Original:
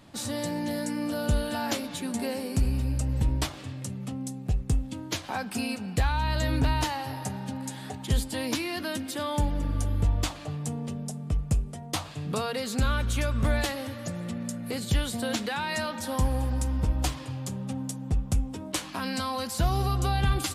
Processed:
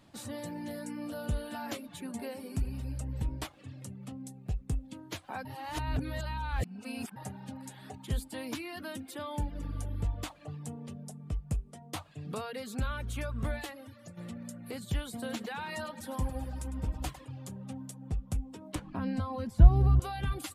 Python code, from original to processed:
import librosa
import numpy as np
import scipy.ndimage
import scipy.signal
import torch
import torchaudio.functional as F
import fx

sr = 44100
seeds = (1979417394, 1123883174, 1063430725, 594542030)

y = fx.echo_feedback(x, sr, ms=103, feedback_pct=38, wet_db=-9, at=(15.03, 17.25))
y = fx.tilt_eq(y, sr, slope=-4.0, at=(18.75, 20.0))
y = fx.edit(y, sr, fx.reverse_span(start_s=5.45, length_s=1.71),
    fx.fade_out_to(start_s=13.42, length_s=0.75, floor_db=-8.0), tone=tone)
y = fx.dynamic_eq(y, sr, hz=5500.0, q=1.0, threshold_db=-50.0, ratio=4.0, max_db=-6)
y = fx.dereverb_blind(y, sr, rt60_s=0.62)
y = y * 10.0 ** (-7.0 / 20.0)